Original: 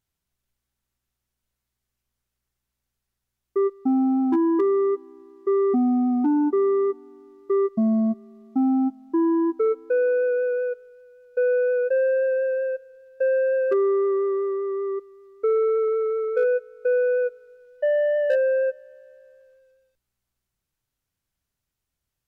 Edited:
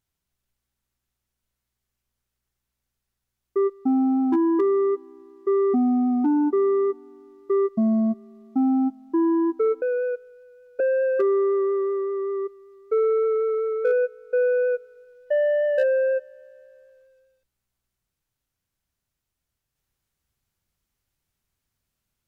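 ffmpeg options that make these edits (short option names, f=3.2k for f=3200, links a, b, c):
-filter_complex "[0:a]asplit=3[a][b][c];[a]atrim=end=9.822[d];[b]atrim=start=10.398:end=11.382[e];[c]atrim=start=13.318[f];[d][e]acrossfade=d=0.004:c1=hsin:c2=hsin[g];[g][f]acrossfade=d=0.004:c1=hsin:c2=hsin"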